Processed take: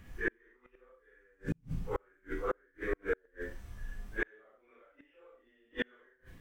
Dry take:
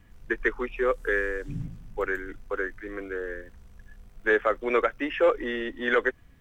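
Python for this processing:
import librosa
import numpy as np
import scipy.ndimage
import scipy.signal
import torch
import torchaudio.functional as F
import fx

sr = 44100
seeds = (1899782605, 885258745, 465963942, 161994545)

y = fx.phase_scramble(x, sr, seeds[0], window_ms=200)
y = fx.room_flutter(y, sr, wall_m=6.3, rt60_s=0.25)
y = fx.gate_flip(y, sr, shuts_db=-23.0, range_db=-41)
y = F.gain(torch.from_numpy(y), 3.5).numpy()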